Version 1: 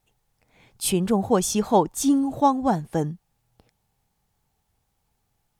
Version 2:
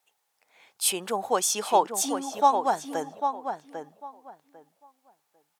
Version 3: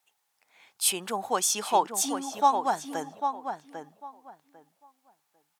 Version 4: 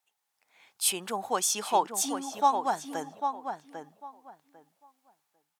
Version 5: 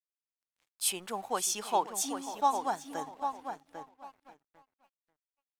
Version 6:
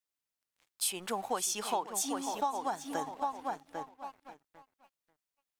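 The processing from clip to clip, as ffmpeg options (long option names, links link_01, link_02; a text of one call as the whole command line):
ffmpeg -i in.wav -filter_complex "[0:a]highpass=660,asplit=2[link_01][link_02];[link_02]adelay=798,lowpass=frequency=2300:poles=1,volume=-6.5dB,asplit=2[link_03][link_04];[link_04]adelay=798,lowpass=frequency=2300:poles=1,volume=0.2,asplit=2[link_05][link_06];[link_06]adelay=798,lowpass=frequency=2300:poles=1,volume=0.2[link_07];[link_03][link_05][link_07]amix=inputs=3:normalize=0[link_08];[link_01][link_08]amix=inputs=2:normalize=0,volume=1.5dB" out.wav
ffmpeg -i in.wav -af "equalizer=frequency=500:width=1.5:gain=-5.5" out.wav
ffmpeg -i in.wav -af "dynaudnorm=framelen=170:gausssize=5:maxgain=5dB,volume=-6.5dB" out.wav
ffmpeg -i in.wav -af "aeval=exprs='sgn(val(0))*max(abs(val(0))-0.00211,0)':channel_layout=same,aecho=1:1:539:0.178,volume=-3.5dB" out.wav
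ffmpeg -i in.wav -af "acompressor=threshold=-34dB:ratio=6,volume=4.5dB" out.wav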